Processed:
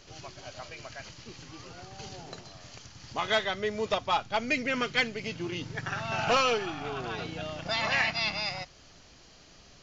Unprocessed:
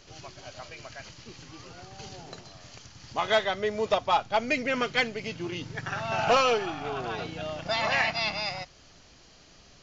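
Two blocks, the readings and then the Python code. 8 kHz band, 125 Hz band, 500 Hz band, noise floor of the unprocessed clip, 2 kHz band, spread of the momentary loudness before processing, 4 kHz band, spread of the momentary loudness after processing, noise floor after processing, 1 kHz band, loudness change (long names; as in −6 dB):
can't be measured, 0.0 dB, −4.0 dB, −55 dBFS, −0.5 dB, 21 LU, 0.0 dB, 20 LU, −55 dBFS, −3.5 dB, −2.0 dB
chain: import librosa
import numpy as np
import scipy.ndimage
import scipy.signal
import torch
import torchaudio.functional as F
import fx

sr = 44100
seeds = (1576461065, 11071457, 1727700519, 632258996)

y = fx.dynamic_eq(x, sr, hz=670.0, q=1.0, threshold_db=-38.0, ratio=4.0, max_db=-5)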